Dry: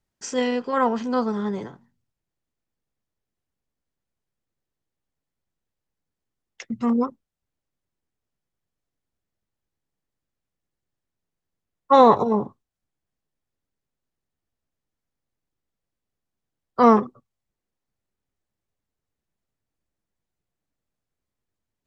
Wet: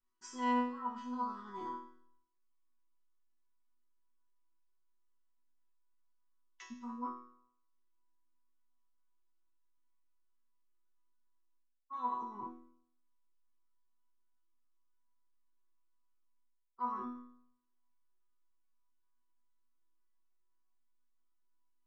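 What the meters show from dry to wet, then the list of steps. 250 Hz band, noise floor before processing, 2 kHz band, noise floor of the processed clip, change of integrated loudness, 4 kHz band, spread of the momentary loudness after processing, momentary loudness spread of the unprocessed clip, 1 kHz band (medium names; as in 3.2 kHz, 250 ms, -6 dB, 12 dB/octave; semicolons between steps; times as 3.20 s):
-18.5 dB, -85 dBFS, -14.5 dB, -77 dBFS, -19.5 dB, under -15 dB, 18 LU, 19 LU, -16.5 dB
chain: FFT filter 370 Hz 0 dB, 660 Hz -14 dB, 950 Hz +13 dB, 1.8 kHz -1 dB; reverse; compression 6:1, threshold -31 dBFS, peak gain reduction 24.5 dB; reverse; chord resonator B3 sus4, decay 0.65 s; trim +13 dB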